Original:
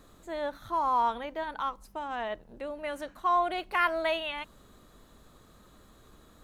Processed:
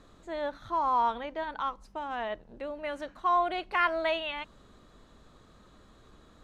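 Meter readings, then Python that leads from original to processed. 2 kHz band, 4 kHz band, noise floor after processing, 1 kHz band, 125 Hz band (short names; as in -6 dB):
0.0 dB, -0.5 dB, -58 dBFS, 0.0 dB, n/a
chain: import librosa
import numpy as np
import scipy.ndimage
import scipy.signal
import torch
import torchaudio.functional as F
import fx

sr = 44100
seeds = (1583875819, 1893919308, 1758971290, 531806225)

y = scipy.signal.sosfilt(scipy.signal.butter(2, 6100.0, 'lowpass', fs=sr, output='sos'), x)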